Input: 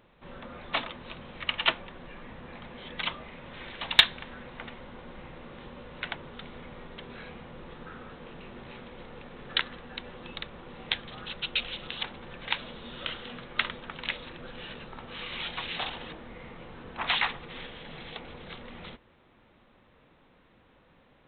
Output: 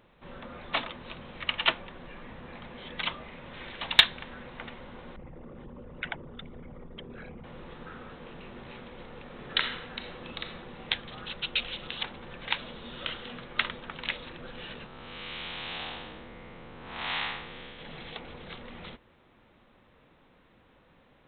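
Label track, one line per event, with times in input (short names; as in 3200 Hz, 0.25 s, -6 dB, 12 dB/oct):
5.160000	7.440000	formant sharpening exponent 2
9.230000	10.580000	reverb throw, RT60 0.99 s, DRR 4 dB
14.860000	17.790000	time blur width 0.23 s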